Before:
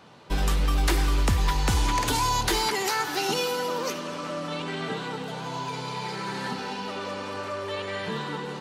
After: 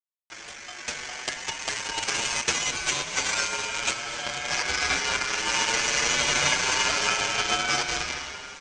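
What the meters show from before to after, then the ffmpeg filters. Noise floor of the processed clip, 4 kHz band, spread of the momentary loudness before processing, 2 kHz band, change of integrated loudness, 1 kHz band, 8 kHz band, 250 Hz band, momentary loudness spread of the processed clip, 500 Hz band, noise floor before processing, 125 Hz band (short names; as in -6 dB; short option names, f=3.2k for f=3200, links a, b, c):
-43 dBFS, +5.5 dB, 9 LU, +7.0 dB, +3.0 dB, -2.0 dB, +8.5 dB, -8.0 dB, 11 LU, -4.5 dB, -35 dBFS, -13.5 dB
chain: -filter_complex "[0:a]acompressor=threshold=-27dB:ratio=2,crystalizer=i=2.5:c=0,dynaudnorm=f=240:g=7:m=16.5dB,aresample=16000,acrusher=bits=3:dc=4:mix=0:aa=0.000001,aresample=44100,highpass=180,equalizer=f=820:t=q:w=4:g=-6,equalizer=f=1.8k:t=q:w=4:g=-5,equalizer=f=4.2k:t=q:w=4:g=4,lowpass=f=5.4k:w=0.5412,lowpass=f=5.4k:w=1.3066,aeval=exprs='val(0)*sin(2*PI*1900*n/s)':c=same,asplit=2[a][b];[b]asplit=6[c][d][e][f][g][h];[c]adelay=244,afreqshift=-38,volume=-16.5dB[i];[d]adelay=488,afreqshift=-76,volume=-21.1dB[j];[e]adelay=732,afreqshift=-114,volume=-25.7dB[k];[f]adelay=976,afreqshift=-152,volume=-30.2dB[l];[g]adelay=1220,afreqshift=-190,volume=-34.8dB[m];[h]adelay=1464,afreqshift=-228,volume=-39.4dB[n];[i][j][k][l][m][n]amix=inputs=6:normalize=0[o];[a][o]amix=inputs=2:normalize=0,asplit=2[p][q];[q]adelay=7.2,afreqshift=0.57[r];[p][r]amix=inputs=2:normalize=1"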